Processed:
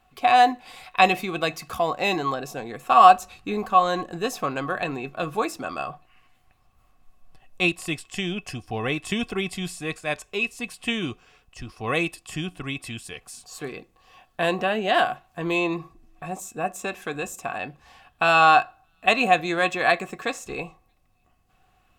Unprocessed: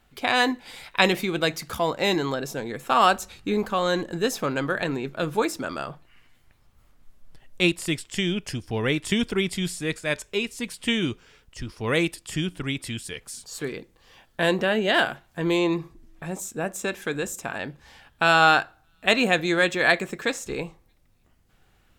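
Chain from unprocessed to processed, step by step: small resonant body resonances 740/1100/2600 Hz, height 16 dB, ringing for 65 ms; trim -3.5 dB

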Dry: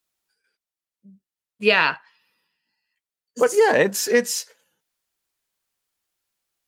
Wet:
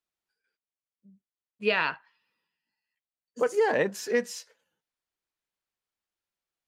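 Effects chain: treble shelf 6 kHz -12 dB; trim -7.5 dB

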